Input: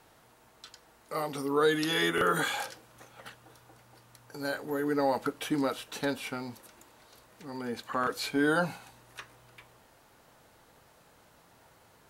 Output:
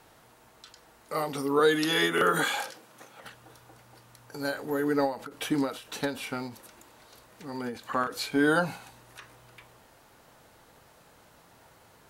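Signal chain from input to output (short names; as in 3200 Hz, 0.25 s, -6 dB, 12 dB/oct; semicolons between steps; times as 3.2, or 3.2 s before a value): 1.59–3.24 HPF 150 Hz 24 dB/oct; ending taper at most 140 dB/s; gain +3 dB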